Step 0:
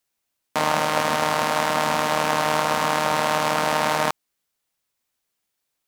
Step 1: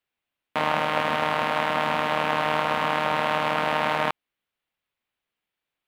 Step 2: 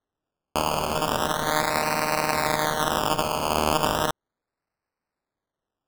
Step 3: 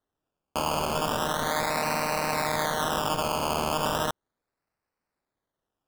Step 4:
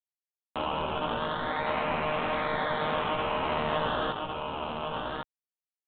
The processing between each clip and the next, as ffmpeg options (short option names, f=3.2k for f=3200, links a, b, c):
-af "highshelf=f=4.2k:t=q:w=1.5:g=-11.5,volume=-3dB"
-af "acrusher=samples=18:mix=1:aa=0.000001:lfo=1:lforange=10.8:lforate=0.36"
-af "asoftclip=type=tanh:threshold=-18dB"
-filter_complex "[0:a]flanger=delay=15:depth=2.7:speed=1.2,asplit=2[a][b];[b]aecho=0:1:1107:0.668[c];[a][c]amix=inputs=2:normalize=0" -ar 8000 -c:a adpcm_g726 -b:a 32k